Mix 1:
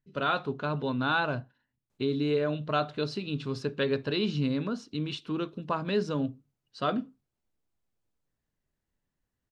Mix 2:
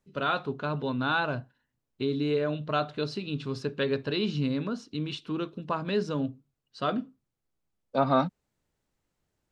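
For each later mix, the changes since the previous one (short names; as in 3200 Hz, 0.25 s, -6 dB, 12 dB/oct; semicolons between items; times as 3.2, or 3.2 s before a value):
second voice: entry -1.90 s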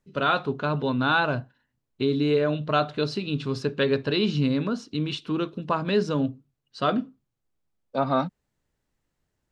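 first voice +5.0 dB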